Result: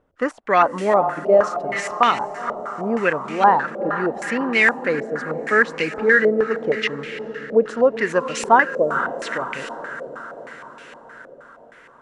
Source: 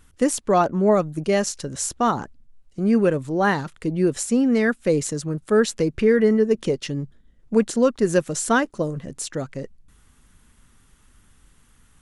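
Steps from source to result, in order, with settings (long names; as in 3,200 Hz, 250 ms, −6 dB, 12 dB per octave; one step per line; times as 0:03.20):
spectral tilt +4.5 dB per octave
on a send: feedback delay with all-pass diffusion 458 ms, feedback 63%, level −10.5 dB
on the sum: boost into a limiter +1 dB
low-pass on a step sequencer 6.4 Hz 580–2,500 Hz
level +1 dB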